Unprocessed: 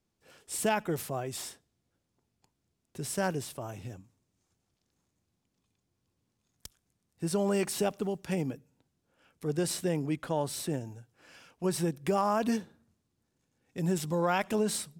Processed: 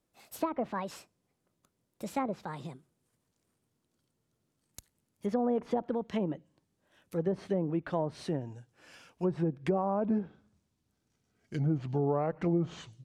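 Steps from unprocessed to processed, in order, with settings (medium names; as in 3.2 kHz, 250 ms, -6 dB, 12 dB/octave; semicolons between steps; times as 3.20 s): gliding tape speed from 153% -> 77%; low-pass that closes with the level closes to 750 Hz, closed at -25 dBFS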